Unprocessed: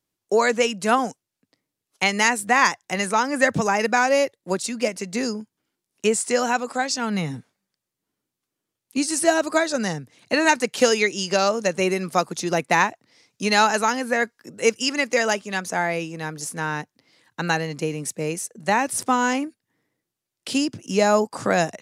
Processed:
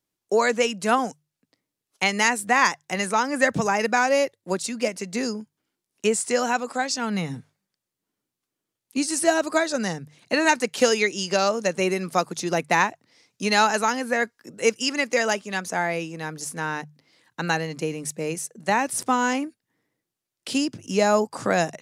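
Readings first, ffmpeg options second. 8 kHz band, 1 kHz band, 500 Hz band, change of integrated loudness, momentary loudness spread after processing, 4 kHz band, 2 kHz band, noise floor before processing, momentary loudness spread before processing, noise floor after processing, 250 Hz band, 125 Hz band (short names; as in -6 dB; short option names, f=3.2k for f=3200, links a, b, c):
-1.5 dB, -1.5 dB, -1.5 dB, -1.5 dB, 10 LU, -1.5 dB, -1.5 dB, -85 dBFS, 10 LU, under -85 dBFS, -1.5 dB, -2.0 dB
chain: -af "bandreject=f=50:t=h:w=6,bandreject=f=100:t=h:w=6,bandreject=f=150:t=h:w=6,volume=-1.5dB"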